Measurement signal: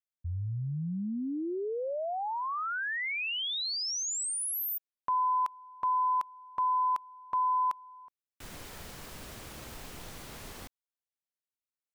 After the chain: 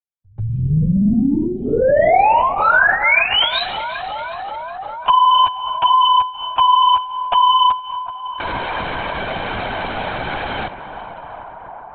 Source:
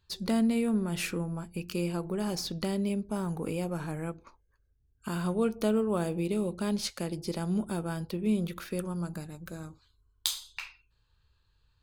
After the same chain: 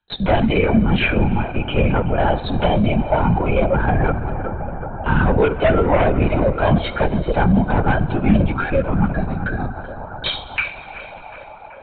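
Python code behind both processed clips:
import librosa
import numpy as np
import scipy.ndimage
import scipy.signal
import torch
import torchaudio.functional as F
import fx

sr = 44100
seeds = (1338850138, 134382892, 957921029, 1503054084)

p1 = scipy.signal.sosfilt(scipy.signal.butter(2, 210.0, 'highpass', fs=sr, output='sos'), x)
p2 = fx.gate_hold(p1, sr, open_db=-44.0, close_db=-49.0, hold_ms=434.0, range_db=-23, attack_ms=4.8, release_ms=100.0)
p3 = fx.noise_reduce_blind(p2, sr, reduce_db=10)
p4 = fx.high_shelf(p3, sr, hz=3000.0, db=-9.5)
p5 = p4 + 0.98 * np.pad(p4, (int(1.3 * sr / 1000.0), 0))[:len(p4)]
p6 = fx.fold_sine(p5, sr, drive_db=7, ceiling_db=-18.5)
p7 = p6 + fx.echo_banded(p6, sr, ms=374, feedback_pct=82, hz=830.0, wet_db=-14.0, dry=0)
p8 = fx.rev_fdn(p7, sr, rt60_s=2.7, lf_ratio=1.45, hf_ratio=0.75, size_ms=39.0, drr_db=12.5)
p9 = fx.lpc_vocoder(p8, sr, seeds[0], excitation='whisper', order=16)
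p10 = fx.band_squash(p9, sr, depth_pct=40)
y = p10 * 10.0 ** (9.0 / 20.0)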